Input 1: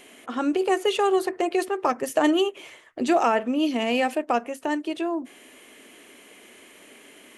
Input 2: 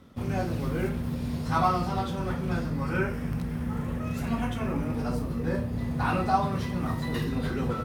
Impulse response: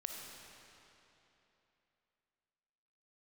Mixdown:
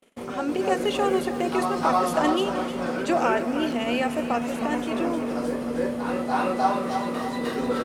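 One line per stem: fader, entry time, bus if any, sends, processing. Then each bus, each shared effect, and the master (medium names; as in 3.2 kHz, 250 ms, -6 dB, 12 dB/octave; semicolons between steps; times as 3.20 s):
-3.5 dB, 0.00 s, send -14.5 dB, echo send -12 dB, none
+1.0 dB, 0.00 s, no send, echo send -6.5 dB, graphic EQ 125/250/500/1000/2000/4000/8000 Hz -5/+5/+11/+4/+4/+4/+9 dB; auto duck -12 dB, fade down 0.40 s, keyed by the first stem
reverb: on, RT60 3.2 s, pre-delay 15 ms
echo: feedback delay 308 ms, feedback 47%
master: gate -44 dBFS, range -37 dB; peaking EQ 71 Hz -14 dB 1.8 oct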